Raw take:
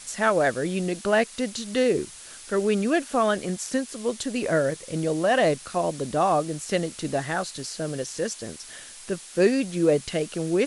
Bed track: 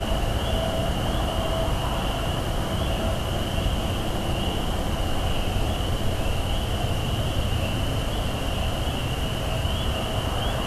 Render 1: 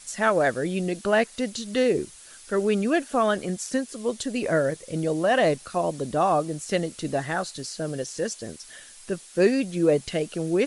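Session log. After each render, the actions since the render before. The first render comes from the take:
broadband denoise 6 dB, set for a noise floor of −44 dBFS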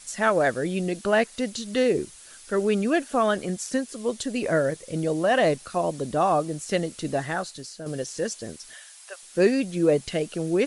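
0:07.25–0:07.86: fade out, to −8.5 dB
0:08.74–0:09.23: Butterworth high-pass 610 Hz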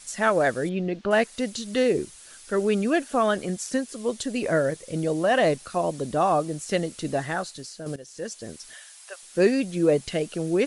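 0:00.69–0:01.11: high-frequency loss of the air 230 metres
0:07.96–0:08.60: fade in, from −16 dB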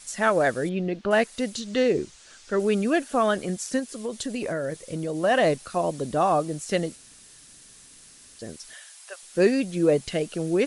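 0:01.60–0:02.60: low-pass filter 7,400 Hz 24 dB per octave
0:03.79–0:05.23: downward compressor, threshold −25 dBFS
0:06.96–0:08.39: fill with room tone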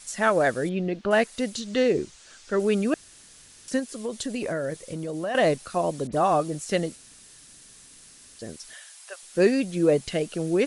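0:02.94–0:03.68: fill with room tone
0:04.90–0:05.35: downward compressor 3 to 1, threshold −28 dBFS
0:06.07–0:06.55: all-pass dispersion highs, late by 58 ms, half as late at 2,600 Hz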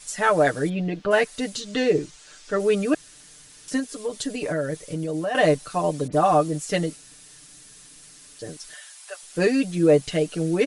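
comb filter 6.7 ms, depth 84%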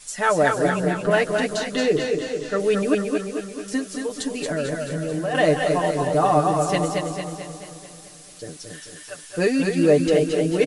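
repeating echo 231 ms, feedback 42%, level −5.5 dB
feedback echo with a swinging delay time 219 ms, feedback 58%, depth 64 cents, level −8 dB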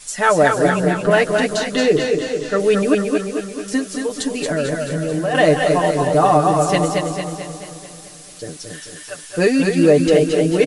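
level +5 dB
brickwall limiter −3 dBFS, peak gain reduction 2.5 dB

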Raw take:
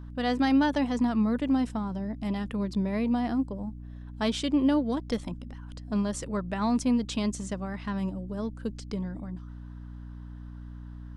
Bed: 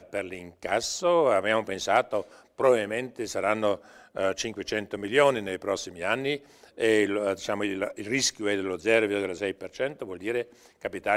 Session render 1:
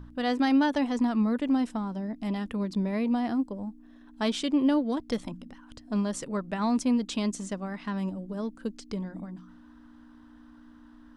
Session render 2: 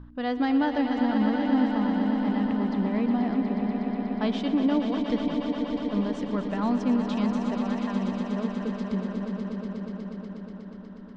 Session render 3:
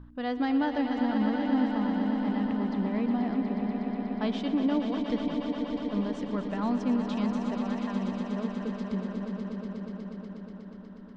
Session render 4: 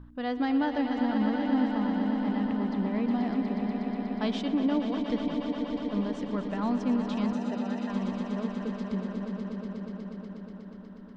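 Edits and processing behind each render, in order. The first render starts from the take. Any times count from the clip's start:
hum removal 60 Hz, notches 3
high-frequency loss of the air 210 metres; echo that builds up and dies away 121 ms, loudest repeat 5, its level −9 dB
level −3 dB
0:03.08–0:04.42: high-shelf EQ 4,200 Hz +7.5 dB; 0:07.33–0:07.90: notch comb filter 1,100 Hz

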